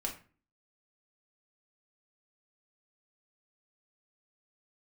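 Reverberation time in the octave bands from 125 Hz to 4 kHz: 0.50 s, 0.55 s, 0.40 s, 0.35 s, 0.35 s, 0.30 s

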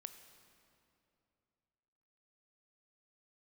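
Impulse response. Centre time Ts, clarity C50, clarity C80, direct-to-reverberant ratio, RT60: 24 ms, 9.5 dB, 10.0 dB, 8.5 dB, 2.7 s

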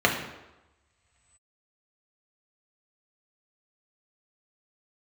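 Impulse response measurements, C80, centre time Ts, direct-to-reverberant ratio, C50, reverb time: 9.0 dB, 29 ms, -0.5 dB, 6.5 dB, 1.0 s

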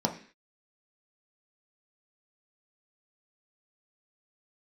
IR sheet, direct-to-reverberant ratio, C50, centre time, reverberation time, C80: 1.5 dB, 11.0 dB, 13 ms, 0.45 s, 15.5 dB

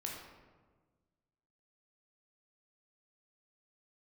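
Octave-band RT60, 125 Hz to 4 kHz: 1.9 s, 1.8 s, 1.5 s, 1.3 s, 1.0 s, 0.75 s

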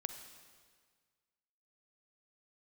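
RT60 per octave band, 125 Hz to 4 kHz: 1.8 s, 1.7 s, 1.7 s, 1.7 s, 1.6 s, 1.6 s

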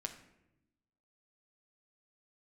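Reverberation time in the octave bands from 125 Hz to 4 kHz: 1.3 s, 1.3 s, 1.0 s, 0.75 s, 0.80 s, 0.55 s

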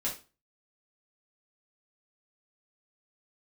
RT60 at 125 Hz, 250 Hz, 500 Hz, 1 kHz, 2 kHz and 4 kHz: 0.40 s, 0.35 s, 0.30 s, 0.30 s, 0.30 s, 0.30 s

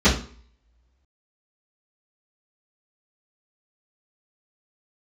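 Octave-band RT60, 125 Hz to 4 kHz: 0.45 s, 0.50 s, 0.50 s, 0.45 s, 0.40 s, 0.40 s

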